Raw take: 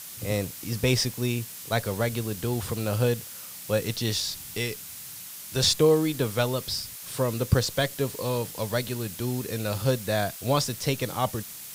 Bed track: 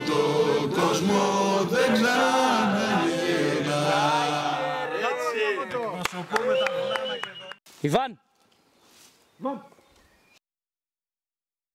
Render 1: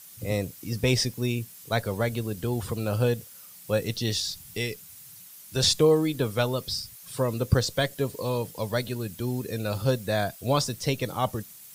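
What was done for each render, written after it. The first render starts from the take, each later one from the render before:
broadband denoise 10 dB, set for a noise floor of −41 dBFS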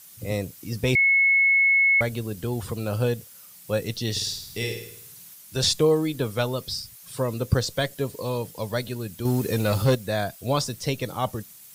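0:00.95–0:02.01: beep over 2,190 Hz −15.5 dBFS
0:04.11–0:05.34: flutter between parallel walls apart 9 metres, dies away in 0.68 s
0:09.25–0:09.95: leveller curve on the samples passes 2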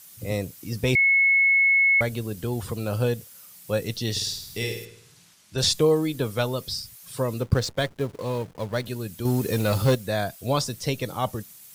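0:04.85–0:05.58: high-frequency loss of the air 76 metres
0:07.41–0:08.86: slack as between gear wheels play −33.5 dBFS
0:09.45–0:10.02: log-companded quantiser 6 bits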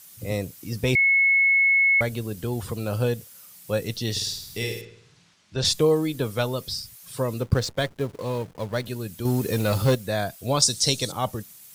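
0:04.81–0:05.65: high-frequency loss of the air 100 metres
0:10.62–0:11.12: flat-topped bell 5,800 Hz +14 dB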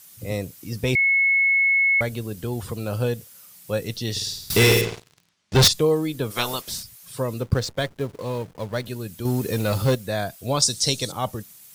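0:04.50–0:05.68: leveller curve on the samples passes 5
0:06.30–0:06.82: ceiling on every frequency bin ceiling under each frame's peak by 21 dB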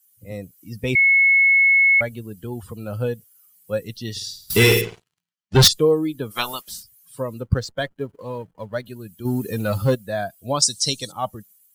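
spectral dynamics exaggerated over time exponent 1.5
automatic gain control gain up to 4 dB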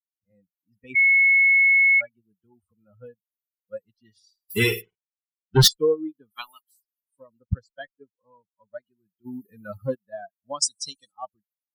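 spectral dynamics exaggerated over time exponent 2
expander for the loud parts 1.5 to 1, over −38 dBFS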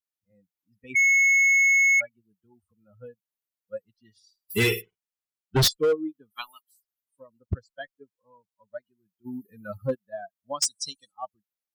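gain into a clipping stage and back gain 17.5 dB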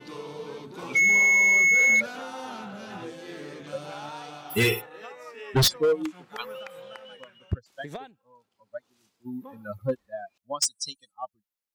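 mix in bed track −16 dB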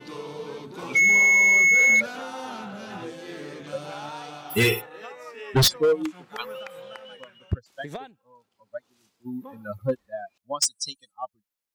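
level +2 dB

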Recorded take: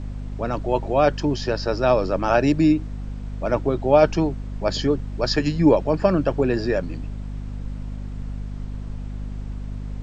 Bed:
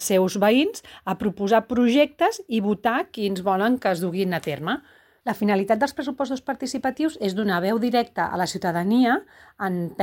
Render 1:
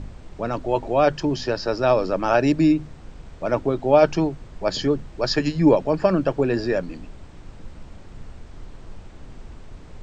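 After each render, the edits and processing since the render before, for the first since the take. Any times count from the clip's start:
hum removal 50 Hz, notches 5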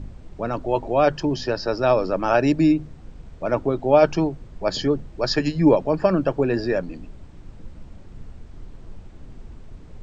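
broadband denoise 6 dB, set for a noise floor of −43 dBFS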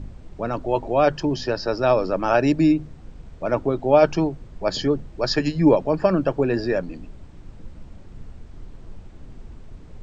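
no processing that can be heard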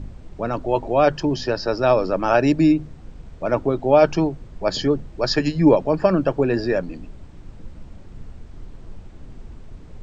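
level +1.5 dB
brickwall limiter −3 dBFS, peak gain reduction 1 dB

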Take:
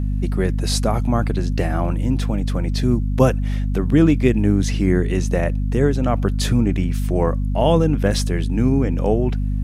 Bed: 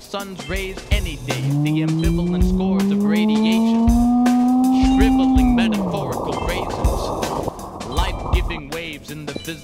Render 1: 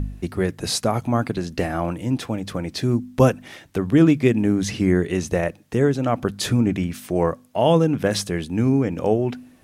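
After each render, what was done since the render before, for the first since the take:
hum removal 50 Hz, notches 5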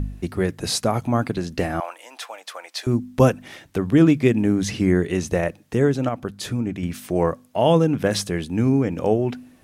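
0:01.80–0:02.87: high-pass filter 670 Hz 24 dB per octave
0:06.09–0:06.83: clip gain −6 dB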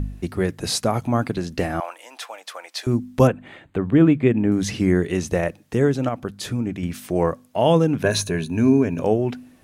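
0:03.27–0:04.52: moving average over 8 samples
0:08.02–0:09.02: EQ curve with evenly spaced ripples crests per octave 1.5, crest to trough 11 dB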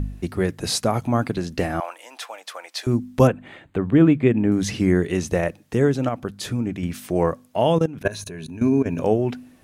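0:07.62–0:08.86: output level in coarse steps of 17 dB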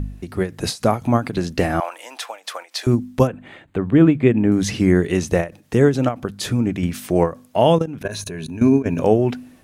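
automatic gain control gain up to 7 dB
every ending faded ahead of time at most 220 dB per second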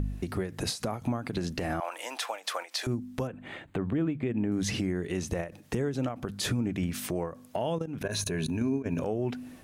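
downward compressor 6 to 1, threshold −25 dBFS, peak gain reduction 16 dB
brickwall limiter −20 dBFS, peak gain reduction 8.5 dB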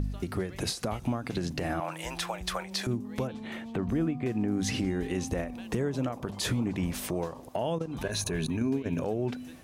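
mix in bed −25 dB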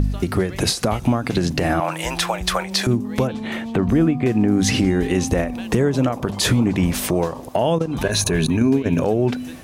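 level +12 dB

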